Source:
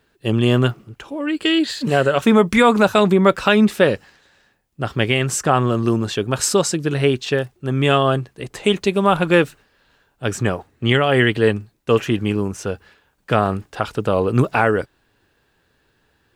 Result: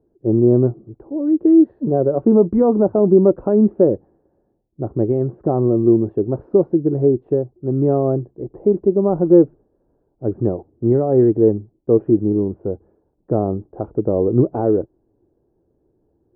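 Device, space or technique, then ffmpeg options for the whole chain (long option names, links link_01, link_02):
under water: -af "lowpass=frequency=680:width=0.5412,lowpass=frequency=680:width=1.3066,equalizer=frequency=340:width_type=o:width=0.47:gain=9.5,volume=-1dB"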